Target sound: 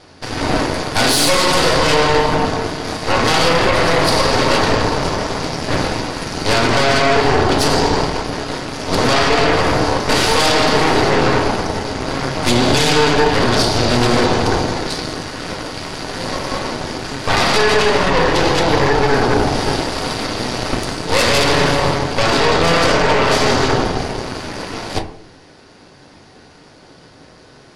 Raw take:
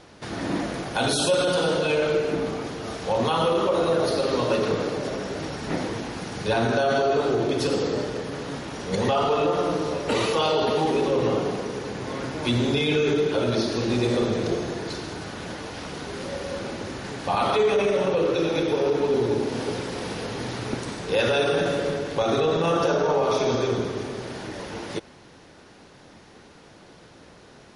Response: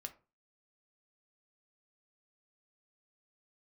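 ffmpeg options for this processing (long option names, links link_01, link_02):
-filter_complex "[0:a]aeval=exprs='0.299*(cos(1*acos(clip(val(0)/0.299,-1,1)))-cos(1*PI/2))+0.119*(cos(8*acos(clip(val(0)/0.299,-1,1)))-cos(8*PI/2))':channel_layout=same,equalizer=frequency=4700:width=6.9:gain=8[link_01];[1:a]atrim=start_sample=2205,asetrate=22932,aresample=44100[link_02];[link_01][link_02]afir=irnorm=-1:irlink=0,volume=5dB"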